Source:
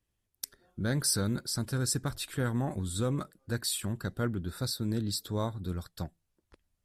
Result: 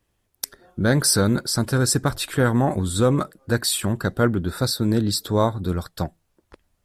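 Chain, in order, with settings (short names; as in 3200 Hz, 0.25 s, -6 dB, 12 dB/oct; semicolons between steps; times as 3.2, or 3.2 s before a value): bell 720 Hz +6 dB 2.9 oct; gain +9 dB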